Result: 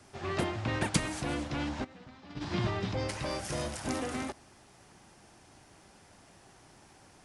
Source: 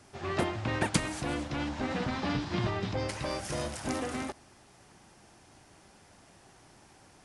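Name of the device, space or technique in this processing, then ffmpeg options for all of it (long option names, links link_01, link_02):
one-band saturation: -filter_complex "[0:a]acrossover=split=280|2300[link_01][link_02][link_03];[link_02]asoftclip=type=tanh:threshold=-28.5dB[link_04];[link_01][link_04][link_03]amix=inputs=3:normalize=0,asplit=3[link_05][link_06][link_07];[link_05]afade=type=out:start_time=1.83:duration=0.02[link_08];[link_06]agate=range=-19dB:threshold=-28dB:ratio=16:detection=peak,afade=type=in:start_time=1.83:duration=0.02,afade=type=out:start_time=2.4:duration=0.02[link_09];[link_07]afade=type=in:start_time=2.4:duration=0.02[link_10];[link_08][link_09][link_10]amix=inputs=3:normalize=0"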